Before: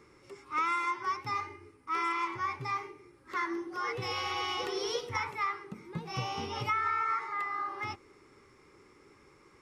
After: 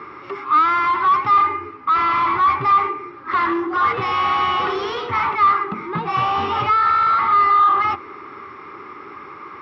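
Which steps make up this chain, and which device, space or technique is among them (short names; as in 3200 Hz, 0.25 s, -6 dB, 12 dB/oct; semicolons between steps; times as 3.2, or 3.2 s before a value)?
overdrive pedal into a guitar cabinet (overdrive pedal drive 26 dB, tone 1200 Hz, clips at -19 dBFS; speaker cabinet 81–4200 Hz, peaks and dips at 83 Hz +8 dB, 510 Hz -9 dB, 1200 Hz +9 dB); gain +7 dB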